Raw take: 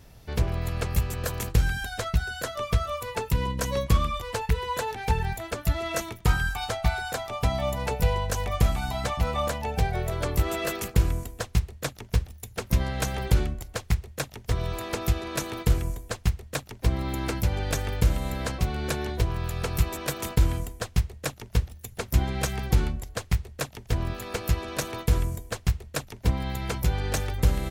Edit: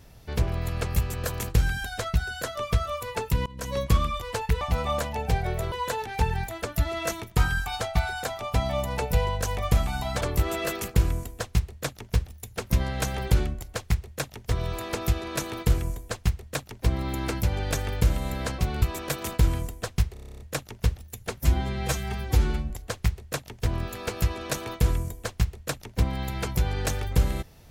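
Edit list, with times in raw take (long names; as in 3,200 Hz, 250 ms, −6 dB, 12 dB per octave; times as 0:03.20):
0:03.46–0:03.82: fade in, from −22 dB
0:09.10–0:10.21: move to 0:04.61
0:18.82–0:19.80: remove
0:21.11: stutter 0.03 s, 10 plays
0:22.09–0:22.97: time-stretch 1.5×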